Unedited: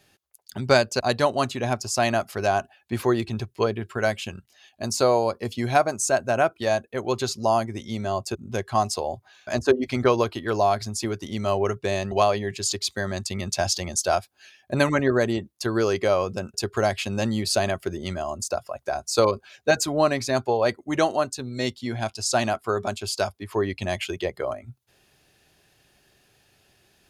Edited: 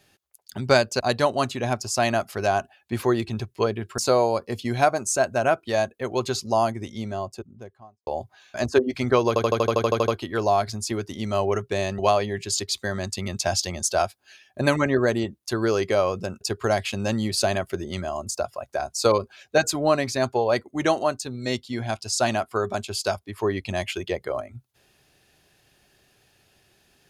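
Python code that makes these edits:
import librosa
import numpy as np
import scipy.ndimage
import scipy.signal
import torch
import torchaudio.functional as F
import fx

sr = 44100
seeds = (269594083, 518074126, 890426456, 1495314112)

y = fx.studio_fade_out(x, sr, start_s=7.61, length_s=1.39)
y = fx.edit(y, sr, fx.cut(start_s=3.98, length_s=0.93),
    fx.stutter(start_s=10.21, slice_s=0.08, count=11), tone=tone)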